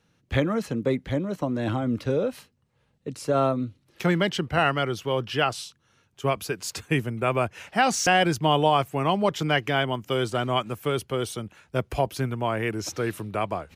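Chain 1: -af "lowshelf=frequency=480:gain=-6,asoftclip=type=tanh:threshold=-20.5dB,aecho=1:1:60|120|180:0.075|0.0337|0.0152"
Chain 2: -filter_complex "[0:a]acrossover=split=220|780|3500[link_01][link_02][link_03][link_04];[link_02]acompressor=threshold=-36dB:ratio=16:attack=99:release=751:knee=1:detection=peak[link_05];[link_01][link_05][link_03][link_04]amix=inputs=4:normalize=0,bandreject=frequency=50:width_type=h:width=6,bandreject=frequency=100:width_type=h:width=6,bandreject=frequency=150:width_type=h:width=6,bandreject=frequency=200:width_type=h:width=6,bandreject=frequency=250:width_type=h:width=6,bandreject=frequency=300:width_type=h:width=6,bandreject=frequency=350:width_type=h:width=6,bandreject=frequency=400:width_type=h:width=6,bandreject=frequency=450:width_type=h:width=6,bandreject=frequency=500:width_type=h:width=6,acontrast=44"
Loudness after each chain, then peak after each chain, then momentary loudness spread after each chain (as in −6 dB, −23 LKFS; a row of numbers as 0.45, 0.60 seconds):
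−30.5, −23.0 LKFS; −19.5, −6.5 dBFS; 8, 8 LU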